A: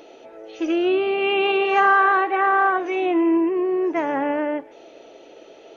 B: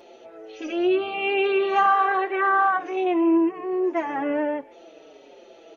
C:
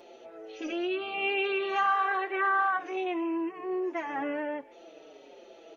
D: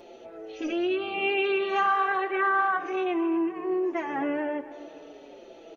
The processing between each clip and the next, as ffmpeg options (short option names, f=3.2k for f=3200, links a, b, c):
-filter_complex "[0:a]asplit=2[a][b];[b]adelay=5.2,afreqshift=-1.3[c];[a][c]amix=inputs=2:normalize=1"
-filter_complex "[0:a]equalizer=f=78:w=0.91:g=-3,acrossover=split=1200[a][b];[a]alimiter=limit=-23.5dB:level=0:latency=1:release=393[c];[c][b]amix=inputs=2:normalize=0,volume=-3dB"
-filter_complex "[0:a]lowshelf=f=220:g=11,asplit=2[a][b];[b]adelay=253,lowpass=f=2.4k:p=1,volume=-15dB,asplit=2[c][d];[d]adelay=253,lowpass=f=2.4k:p=1,volume=0.54,asplit=2[e][f];[f]adelay=253,lowpass=f=2.4k:p=1,volume=0.54,asplit=2[g][h];[h]adelay=253,lowpass=f=2.4k:p=1,volume=0.54,asplit=2[i][j];[j]adelay=253,lowpass=f=2.4k:p=1,volume=0.54[k];[a][c][e][g][i][k]amix=inputs=6:normalize=0,volume=1.5dB"